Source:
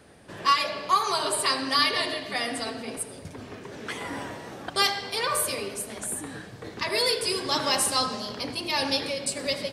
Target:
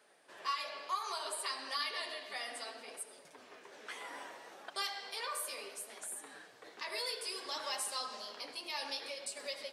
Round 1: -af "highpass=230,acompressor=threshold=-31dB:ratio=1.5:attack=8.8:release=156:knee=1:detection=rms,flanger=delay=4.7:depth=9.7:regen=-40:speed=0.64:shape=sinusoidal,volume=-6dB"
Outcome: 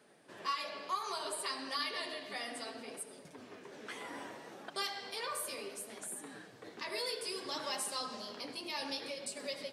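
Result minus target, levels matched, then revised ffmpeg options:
250 Hz band +9.5 dB
-af "highpass=560,acompressor=threshold=-31dB:ratio=1.5:attack=8.8:release=156:knee=1:detection=rms,flanger=delay=4.7:depth=9.7:regen=-40:speed=0.64:shape=sinusoidal,volume=-6dB"

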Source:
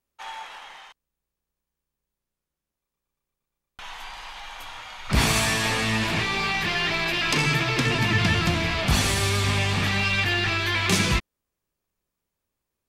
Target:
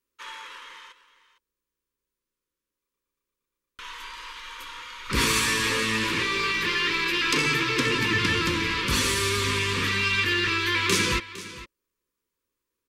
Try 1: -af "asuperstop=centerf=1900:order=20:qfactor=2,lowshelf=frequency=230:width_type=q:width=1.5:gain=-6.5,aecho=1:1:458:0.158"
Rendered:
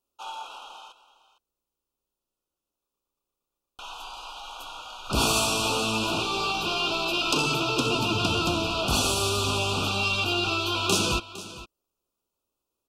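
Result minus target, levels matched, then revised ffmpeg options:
2,000 Hz band −5.0 dB
-af "asuperstop=centerf=710:order=20:qfactor=2,lowshelf=frequency=230:width_type=q:width=1.5:gain=-6.5,aecho=1:1:458:0.158"

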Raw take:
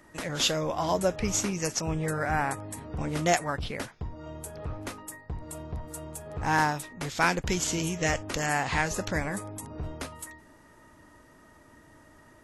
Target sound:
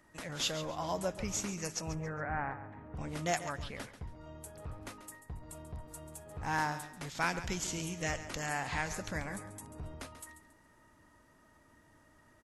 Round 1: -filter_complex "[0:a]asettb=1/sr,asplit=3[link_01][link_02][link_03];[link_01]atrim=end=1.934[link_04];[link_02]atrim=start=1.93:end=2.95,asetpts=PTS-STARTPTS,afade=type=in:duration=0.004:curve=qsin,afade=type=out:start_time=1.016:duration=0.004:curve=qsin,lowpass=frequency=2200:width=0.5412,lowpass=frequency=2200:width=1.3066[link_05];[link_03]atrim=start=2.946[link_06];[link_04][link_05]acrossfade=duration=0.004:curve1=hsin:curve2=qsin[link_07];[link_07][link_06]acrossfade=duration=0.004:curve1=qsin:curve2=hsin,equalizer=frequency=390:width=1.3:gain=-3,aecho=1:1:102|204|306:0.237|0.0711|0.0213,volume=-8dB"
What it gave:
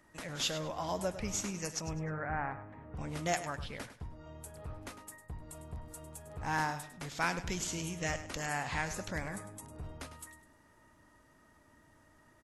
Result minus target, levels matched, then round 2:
echo 36 ms early
-filter_complex "[0:a]asettb=1/sr,asplit=3[link_01][link_02][link_03];[link_01]atrim=end=1.934[link_04];[link_02]atrim=start=1.93:end=2.95,asetpts=PTS-STARTPTS,afade=type=in:duration=0.004:curve=qsin,afade=type=out:start_time=1.016:duration=0.004:curve=qsin,lowpass=frequency=2200:width=0.5412,lowpass=frequency=2200:width=1.3066[link_05];[link_03]atrim=start=2.946[link_06];[link_04][link_05]acrossfade=duration=0.004:curve1=hsin:curve2=qsin[link_07];[link_07][link_06]acrossfade=duration=0.004:curve1=qsin:curve2=hsin,equalizer=frequency=390:width=1.3:gain=-3,aecho=1:1:138|276|414:0.237|0.0711|0.0213,volume=-8dB"

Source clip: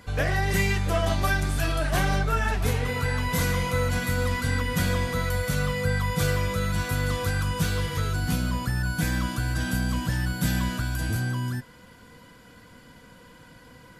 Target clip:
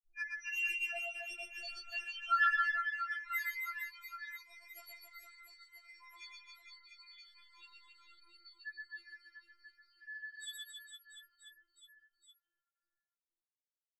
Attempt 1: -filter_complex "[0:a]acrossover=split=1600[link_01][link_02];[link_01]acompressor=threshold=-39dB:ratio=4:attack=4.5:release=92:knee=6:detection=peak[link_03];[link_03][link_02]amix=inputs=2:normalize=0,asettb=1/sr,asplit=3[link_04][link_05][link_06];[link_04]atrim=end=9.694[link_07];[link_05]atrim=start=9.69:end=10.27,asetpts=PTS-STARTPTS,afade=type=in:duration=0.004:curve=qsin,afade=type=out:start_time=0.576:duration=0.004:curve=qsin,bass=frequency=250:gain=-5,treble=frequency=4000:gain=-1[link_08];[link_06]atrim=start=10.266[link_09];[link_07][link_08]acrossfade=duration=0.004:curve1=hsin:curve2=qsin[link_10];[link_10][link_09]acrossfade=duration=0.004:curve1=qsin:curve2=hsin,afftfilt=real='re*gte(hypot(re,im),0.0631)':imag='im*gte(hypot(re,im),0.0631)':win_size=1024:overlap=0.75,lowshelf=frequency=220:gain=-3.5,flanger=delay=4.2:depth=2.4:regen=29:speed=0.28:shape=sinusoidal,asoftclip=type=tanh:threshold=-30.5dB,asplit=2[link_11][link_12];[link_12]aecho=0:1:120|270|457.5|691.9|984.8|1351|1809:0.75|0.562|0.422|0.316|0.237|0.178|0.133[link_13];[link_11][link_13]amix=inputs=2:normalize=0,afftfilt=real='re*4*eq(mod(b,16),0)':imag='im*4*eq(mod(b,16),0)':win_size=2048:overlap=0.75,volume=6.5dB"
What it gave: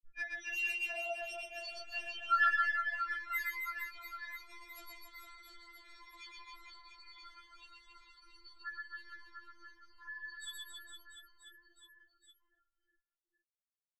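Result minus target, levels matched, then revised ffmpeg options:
downward compressor: peak gain reduction −6.5 dB
-filter_complex "[0:a]acrossover=split=1600[link_01][link_02];[link_01]acompressor=threshold=-48dB:ratio=4:attack=4.5:release=92:knee=6:detection=peak[link_03];[link_03][link_02]amix=inputs=2:normalize=0,asettb=1/sr,asplit=3[link_04][link_05][link_06];[link_04]atrim=end=9.694[link_07];[link_05]atrim=start=9.69:end=10.27,asetpts=PTS-STARTPTS,afade=type=in:duration=0.004:curve=qsin,afade=type=out:start_time=0.576:duration=0.004:curve=qsin,bass=frequency=250:gain=-5,treble=frequency=4000:gain=-1[link_08];[link_06]atrim=start=10.266[link_09];[link_07][link_08]acrossfade=duration=0.004:curve1=hsin:curve2=qsin[link_10];[link_10][link_09]acrossfade=duration=0.004:curve1=qsin:curve2=hsin,afftfilt=real='re*gte(hypot(re,im),0.0631)':imag='im*gte(hypot(re,im),0.0631)':win_size=1024:overlap=0.75,lowshelf=frequency=220:gain=-3.5,flanger=delay=4.2:depth=2.4:regen=29:speed=0.28:shape=sinusoidal,asoftclip=type=tanh:threshold=-30.5dB,asplit=2[link_11][link_12];[link_12]aecho=0:1:120|270|457.5|691.9|984.8|1351|1809:0.75|0.562|0.422|0.316|0.237|0.178|0.133[link_13];[link_11][link_13]amix=inputs=2:normalize=0,afftfilt=real='re*4*eq(mod(b,16),0)':imag='im*4*eq(mod(b,16),0)':win_size=2048:overlap=0.75,volume=6.5dB"

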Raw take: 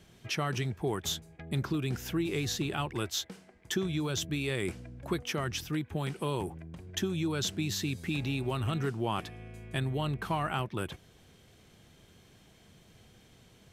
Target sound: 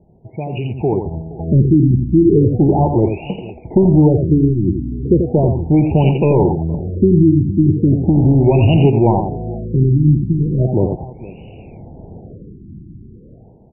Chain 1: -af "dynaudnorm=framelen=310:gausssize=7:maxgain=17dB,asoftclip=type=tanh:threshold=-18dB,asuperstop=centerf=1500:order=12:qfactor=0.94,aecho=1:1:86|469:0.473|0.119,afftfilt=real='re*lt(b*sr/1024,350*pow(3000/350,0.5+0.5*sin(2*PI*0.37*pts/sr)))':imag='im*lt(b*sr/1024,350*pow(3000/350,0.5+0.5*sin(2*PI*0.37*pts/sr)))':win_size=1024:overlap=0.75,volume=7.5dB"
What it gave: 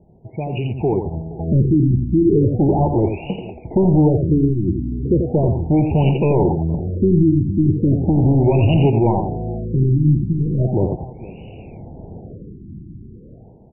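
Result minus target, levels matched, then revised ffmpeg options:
soft clipping: distortion +6 dB
-af "dynaudnorm=framelen=310:gausssize=7:maxgain=17dB,asoftclip=type=tanh:threshold=-11.5dB,asuperstop=centerf=1500:order=12:qfactor=0.94,aecho=1:1:86|469:0.473|0.119,afftfilt=real='re*lt(b*sr/1024,350*pow(3000/350,0.5+0.5*sin(2*PI*0.37*pts/sr)))':imag='im*lt(b*sr/1024,350*pow(3000/350,0.5+0.5*sin(2*PI*0.37*pts/sr)))':win_size=1024:overlap=0.75,volume=7.5dB"

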